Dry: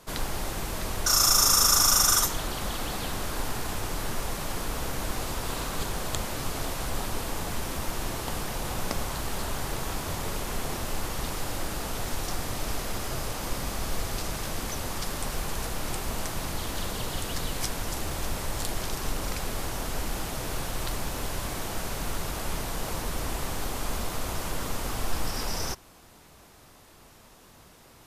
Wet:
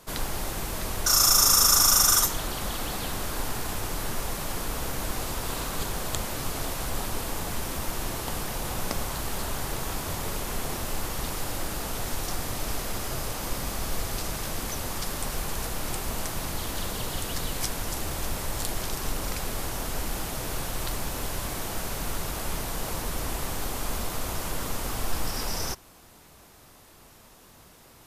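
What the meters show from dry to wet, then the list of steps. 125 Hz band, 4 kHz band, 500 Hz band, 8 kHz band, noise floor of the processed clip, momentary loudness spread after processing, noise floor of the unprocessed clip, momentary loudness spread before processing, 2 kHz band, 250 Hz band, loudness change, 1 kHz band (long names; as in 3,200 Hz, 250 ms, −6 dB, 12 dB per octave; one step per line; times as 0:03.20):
0.0 dB, +0.5 dB, 0.0 dB, +1.5 dB, −53 dBFS, 10 LU, −53 dBFS, 10 LU, 0.0 dB, 0.0 dB, +1.5 dB, 0.0 dB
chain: high-shelf EQ 11,000 Hz +6 dB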